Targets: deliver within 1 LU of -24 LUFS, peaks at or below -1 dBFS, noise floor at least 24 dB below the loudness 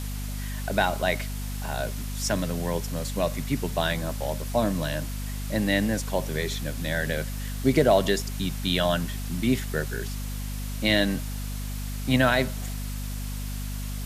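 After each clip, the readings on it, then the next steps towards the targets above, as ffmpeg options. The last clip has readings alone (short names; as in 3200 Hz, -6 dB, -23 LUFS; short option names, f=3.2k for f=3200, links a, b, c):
hum 50 Hz; harmonics up to 250 Hz; hum level -30 dBFS; noise floor -32 dBFS; noise floor target -52 dBFS; loudness -27.5 LUFS; peak -7.5 dBFS; loudness target -24.0 LUFS
-> -af "bandreject=f=50:t=h:w=6,bandreject=f=100:t=h:w=6,bandreject=f=150:t=h:w=6,bandreject=f=200:t=h:w=6,bandreject=f=250:t=h:w=6"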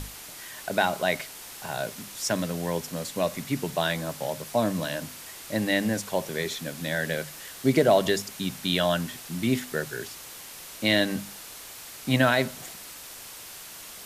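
hum none; noise floor -43 dBFS; noise floor target -52 dBFS
-> -af "afftdn=nr=9:nf=-43"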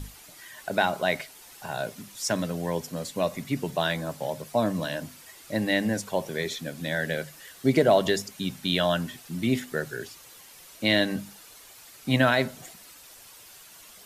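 noise floor -50 dBFS; noise floor target -52 dBFS
-> -af "afftdn=nr=6:nf=-50"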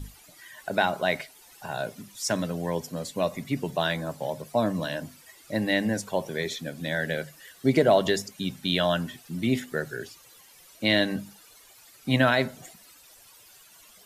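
noise floor -54 dBFS; loudness -27.5 LUFS; peak -8.5 dBFS; loudness target -24.0 LUFS
-> -af "volume=3.5dB"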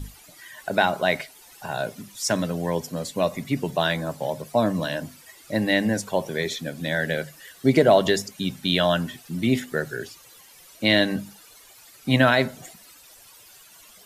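loudness -24.0 LUFS; peak -5.0 dBFS; noise floor -50 dBFS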